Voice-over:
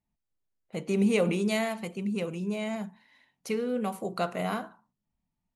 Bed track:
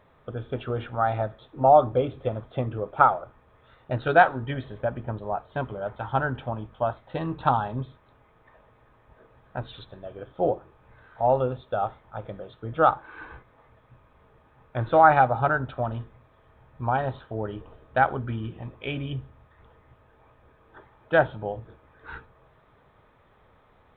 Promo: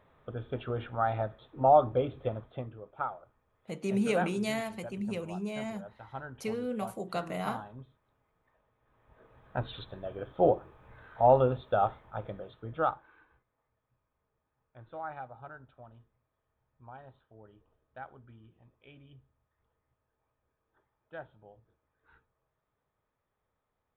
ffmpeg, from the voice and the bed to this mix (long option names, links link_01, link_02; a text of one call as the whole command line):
ffmpeg -i stem1.wav -i stem2.wav -filter_complex "[0:a]adelay=2950,volume=-4.5dB[link_01];[1:a]volume=11.5dB,afade=type=out:start_time=2.29:duration=0.47:silence=0.266073,afade=type=in:start_time=8.8:duration=0.85:silence=0.149624,afade=type=out:start_time=11.86:duration=1.39:silence=0.0630957[link_02];[link_01][link_02]amix=inputs=2:normalize=0" out.wav